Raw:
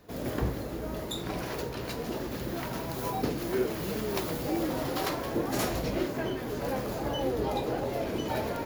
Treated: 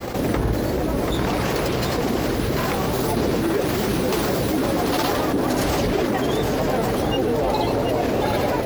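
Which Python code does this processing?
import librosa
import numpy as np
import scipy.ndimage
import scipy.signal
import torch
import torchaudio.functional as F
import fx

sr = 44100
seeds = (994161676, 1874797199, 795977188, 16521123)

p1 = fx.granulator(x, sr, seeds[0], grain_ms=100.0, per_s=20.0, spray_ms=100.0, spread_st=3)
p2 = p1 + fx.echo_single(p1, sr, ms=737, db=-8.5, dry=0)
p3 = fx.env_flatten(p2, sr, amount_pct=70)
y = F.gain(torch.from_numpy(p3), 7.0).numpy()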